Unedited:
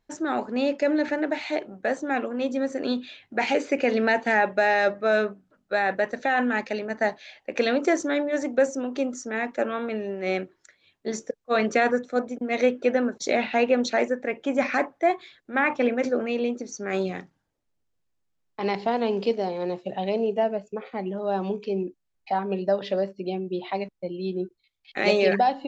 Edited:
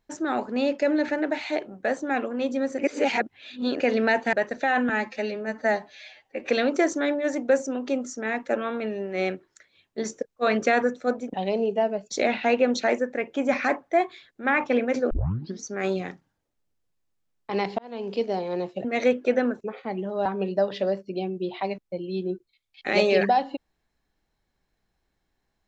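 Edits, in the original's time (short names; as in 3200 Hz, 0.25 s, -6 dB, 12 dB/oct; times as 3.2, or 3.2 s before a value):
2.79–3.8 reverse
4.33–5.95 cut
6.51–7.58 stretch 1.5×
12.42–13.19 swap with 19.94–20.7
16.2 tape start 0.52 s
18.88–19.42 fade in
21.34–22.36 cut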